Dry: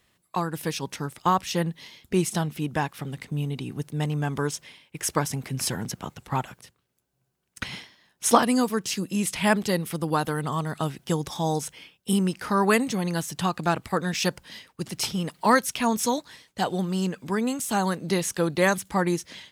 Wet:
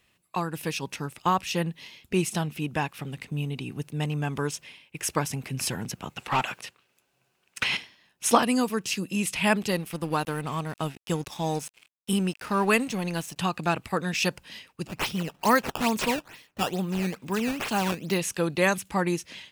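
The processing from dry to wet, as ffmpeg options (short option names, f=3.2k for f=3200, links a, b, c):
-filter_complex "[0:a]asettb=1/sr,asplit=3[a][b][c];[a]atrim=end=6.174[d];[b]atrim=start=6.17:end=7.77,asetpts=PTS-STARTPTS,afade=t=in:d=0.004:c=qsin,afade=t=out:st=1.596:d=0.004:c=qsin,asplit=2[e][f];[f]highpass=f=720:p=1,volume=19dB,asoftclip=type=tanh:threshold=-14.5dB[g];[e][g]amix=inputs=2:normalize=0,lowpass=f=4.4k:p=1,volume=-6dB[h];[c]atrim=start=7.766[i];[d][h]acrossfade=d=0.004:c1=hsin:c2=qsin[j];[j][i]acrossfade=d=0.004:c1=qsin:c2=hsin,asettb=1/sr,asplit=3[k][l][m];[k]atrim=end=9.714[n];[l]atrim=start=9.71:end=13.36,asetpts=PTS-STARTPTS,afade=t=in:d=0.004:c=qsin,afade=t=out:st=3.646:d=0.004:c=qsin,aeval=exprs='sgn(val(0))*max(abs(val(0))-0.0075,0)':c=same[o];[m]atrim=start=13.356[p];[n][o]acrossfade=d=0.004:c1=hsin:c2=qsin[q];[q][p]acrossfade=d=0.004:c1=qsin:c2=hsin,asplit=3[r][s][t];[r]afade=t=out:st=14.86:d=0.02[u];[s]acrusher=samples=12:mix=1:aa=0.000001:lfo=1:lforange=19.2:lforate=2.3,afade=t=in:st=14.86:d=0.02,afade=t=out:st=18.17:d=0.02[v];[t]afade=t=in:st=18.17:d=0.02[w];[u][v][w]amix=inputs=3:normalize=0,equalizer=f=2.6k:t=o:w=0.3:g=8.5,volume=-2dB"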